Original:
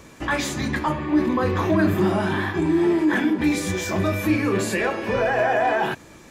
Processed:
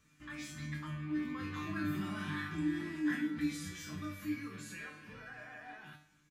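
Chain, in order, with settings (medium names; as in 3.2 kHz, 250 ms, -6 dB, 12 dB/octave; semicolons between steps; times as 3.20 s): Doppler pass-by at 2.56 s, 7 m/s, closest 7 m; high-order bell 570 Hz -13.5 dB; feedback comb 150 Hz, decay 0.47 s, harmonics all, mix 90%; on a send: delay 270 ms -22 dB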